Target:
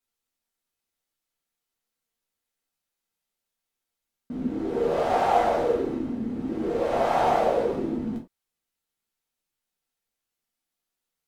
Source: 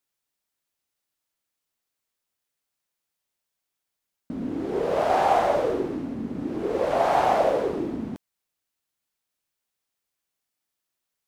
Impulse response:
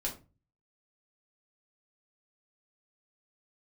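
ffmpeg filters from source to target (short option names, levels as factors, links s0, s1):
-filter_complex "[1:a]atrim=start_sample=2205,atrim=end_sample=4410,asetrate=38367,aresample=44100[s0];[0:a][s0]afir=irnorm=-1:irlink=0,volume=0.596"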